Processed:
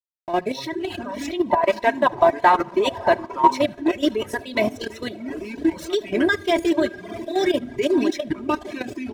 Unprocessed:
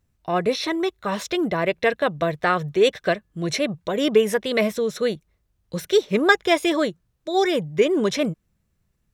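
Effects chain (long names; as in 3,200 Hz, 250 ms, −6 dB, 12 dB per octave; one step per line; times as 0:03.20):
feedback delay with all-pass diffusion 628 ms, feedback 59%, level −13.5 dB
delay with pitch and tempo change per echo 100 ms, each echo −5 semitones, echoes 3, each echo −6 dB
convolution reverb RT60 1.4 s, pre-delay 5 ms, DRR 8 dB
slack as between gear wheels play −33.5 dBFS
output level in coarse steps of 10 dB
notch filter 1,300 Hz, Q 5.8
comb filter 3.1 ms, depth 76%
single-tap delay 74 ms −14.5 dB
reverb reduction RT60 1.2 s
0:01.50–0:03.62: parametric band 940 Hz +14.5 dB 0.69 octaves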